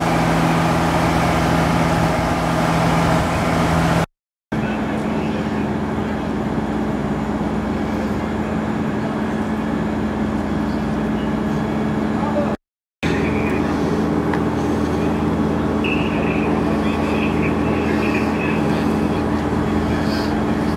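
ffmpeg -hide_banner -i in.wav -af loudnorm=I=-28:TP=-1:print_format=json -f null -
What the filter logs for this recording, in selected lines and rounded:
"input_i" : "-19.4",
"input_tp" : "-3.4",
"input_lra" : "4.4",
"input_thresh" : "-29.4",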